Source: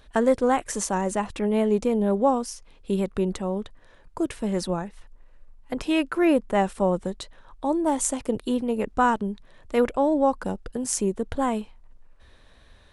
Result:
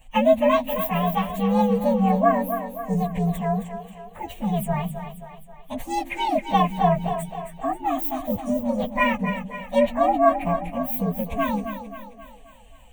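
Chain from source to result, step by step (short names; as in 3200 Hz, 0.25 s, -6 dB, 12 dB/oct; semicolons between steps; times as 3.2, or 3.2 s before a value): inharmonic rescaling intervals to 127%; fixed phaser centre 1400 Hz, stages 6; split-band echo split 310 Hz, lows 0.158 s, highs 0.266 s, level -9 dB; gain +7.5 dB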